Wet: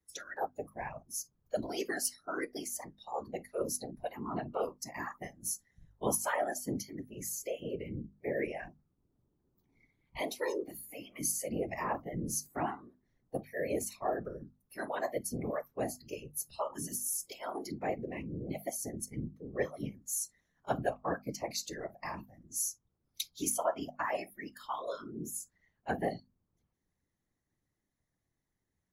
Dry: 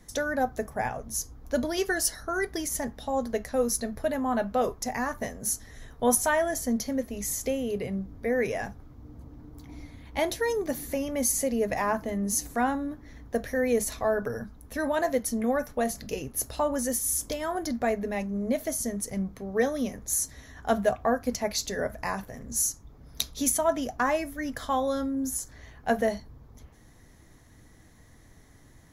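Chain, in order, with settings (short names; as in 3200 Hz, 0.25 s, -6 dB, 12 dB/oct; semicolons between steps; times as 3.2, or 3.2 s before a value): spectral noise reduction 22 dB; whisperiser; notches 50/100/150/200/250 Hz; gain -7.5 dB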